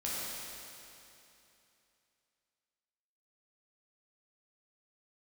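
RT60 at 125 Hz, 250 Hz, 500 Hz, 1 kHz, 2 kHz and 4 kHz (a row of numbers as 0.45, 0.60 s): 2.9, 3.0, 2.9, 2.9, 2.9, 2.8 s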